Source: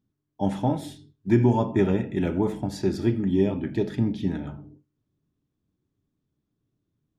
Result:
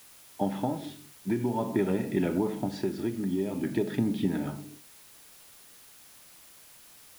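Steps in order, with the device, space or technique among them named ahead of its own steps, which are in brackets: medium wave at night (band-pass 160–3900 Hz; compression, threshold -27 dBFS, peak gain reduction 12 dB; tremolo 0.48 Hz, depth 41%; whistle 10 kHz -65 dBFS; white noise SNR 22 dB); trim +4.5 dB

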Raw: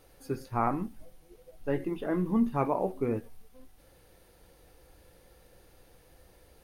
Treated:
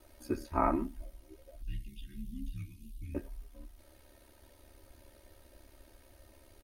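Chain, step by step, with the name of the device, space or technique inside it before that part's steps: 1.62–3.15 s: elliptic band-stop 140–3100 Hz, stop band 80 dB; ring-modulated robot voice (ring modulator 35 Hz; comb 3.2 ms, depth 86%)

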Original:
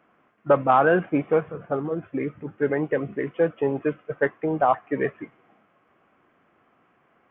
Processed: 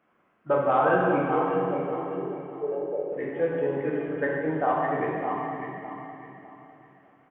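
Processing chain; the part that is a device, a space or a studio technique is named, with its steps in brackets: 1.35–3.12 s: Chebyshev band-pass 330–900 Hz, order 5; delay 603 ms -9 dB; feedback delay 604 ms, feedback 31%, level -9.5 dB; stairwell (reverberation RT60 2.4 s, pre-delay 7 ms, DRR -3.5 dB); trim -8 dB

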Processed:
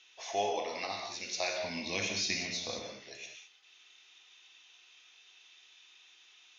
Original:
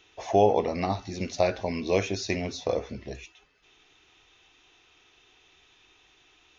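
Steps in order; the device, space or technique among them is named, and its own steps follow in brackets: 1.60–2.85 s: resonant low shelf 310 Hz +11 dB, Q 1.5; piezo pickup straight into a mixer (low-pass 5 kHz 12 dB/octave; differentiator); gated-style reverb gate 230 ms flat, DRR 1.5 dB; trim +7.5 dB

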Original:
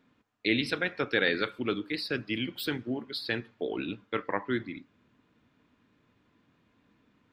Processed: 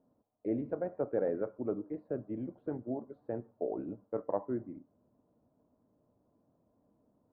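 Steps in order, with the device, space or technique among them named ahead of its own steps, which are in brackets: under water (low-pass 910 Hz 24 dB/octave; peaking EQ 620 Hz +10.5 dB 0.59 oct); trim -5.5 dB

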